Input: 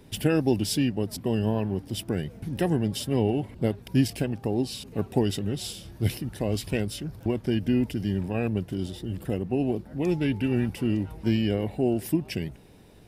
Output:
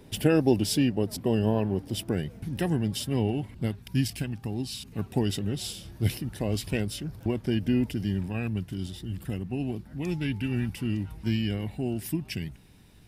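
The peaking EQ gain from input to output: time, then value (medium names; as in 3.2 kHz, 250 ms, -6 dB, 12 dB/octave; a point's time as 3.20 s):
peaking EQ 510 Hz 1.6 oct
1.97 s +2 dB
2.55 s -5.5 dB
3.27 s -5.5 dB
3.89 s -13.5 dB
4.82 s -13.5 dB
5.33 s -3 dB
7.97 s -3 dB
8.46 s -11.5 dB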